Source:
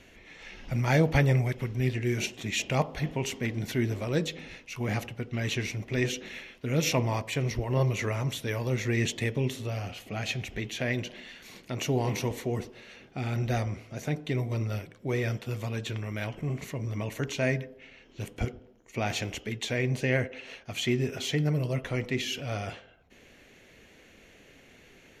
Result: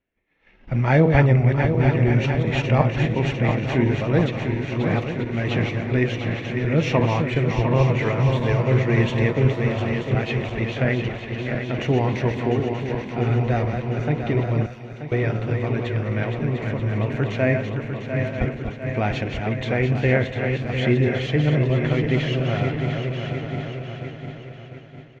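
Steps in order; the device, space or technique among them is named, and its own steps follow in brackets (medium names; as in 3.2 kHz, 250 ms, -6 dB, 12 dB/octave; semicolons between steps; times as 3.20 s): backward echo that repeats 350 ms, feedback 79%, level -6 dB; hearing-loss simulation (low-pass 2.2 kHz 12 dB/octave; expander -36 dBFS); 14.66–15.12 s: differentiator; delay 932 ms -11 dB; trim +7 dB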